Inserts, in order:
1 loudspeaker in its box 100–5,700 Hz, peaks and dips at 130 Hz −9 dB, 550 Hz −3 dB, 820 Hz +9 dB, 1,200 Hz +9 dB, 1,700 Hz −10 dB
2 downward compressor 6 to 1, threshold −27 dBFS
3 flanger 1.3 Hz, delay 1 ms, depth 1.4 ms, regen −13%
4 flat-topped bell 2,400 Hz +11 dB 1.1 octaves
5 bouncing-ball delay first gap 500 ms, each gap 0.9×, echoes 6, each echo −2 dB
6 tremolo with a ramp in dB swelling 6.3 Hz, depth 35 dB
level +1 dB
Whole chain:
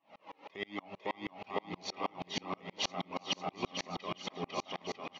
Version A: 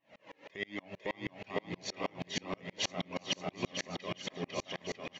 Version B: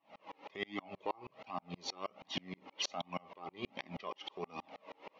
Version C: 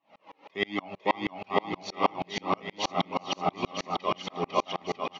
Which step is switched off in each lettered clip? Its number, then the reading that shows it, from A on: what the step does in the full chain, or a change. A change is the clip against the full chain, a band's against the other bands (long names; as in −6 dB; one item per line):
1, 1 kHz band −6.0 dB
5, change in momentary loudness spread +4 LU
2, average gain reduction 5.0 dB